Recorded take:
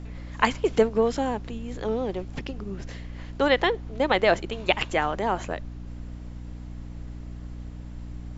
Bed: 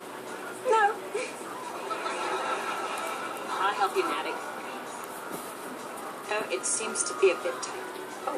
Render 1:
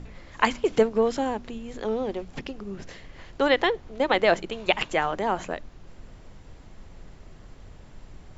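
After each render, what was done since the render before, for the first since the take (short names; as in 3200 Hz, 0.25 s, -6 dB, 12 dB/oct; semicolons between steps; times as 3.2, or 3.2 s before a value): de-hum 60 Hz, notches 5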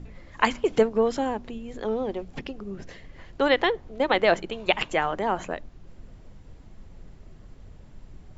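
denoiser 6 dB, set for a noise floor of -48 dBFS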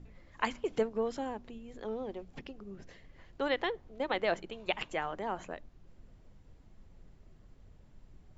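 gain -10.5 dB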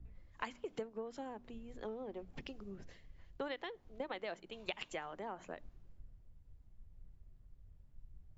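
compressor 12:1, threshold -40 dBFS, peak gain reduction 16 dB; three-band expander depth 70%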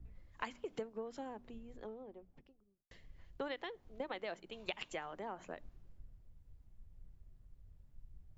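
1.17–2.91 studio fade out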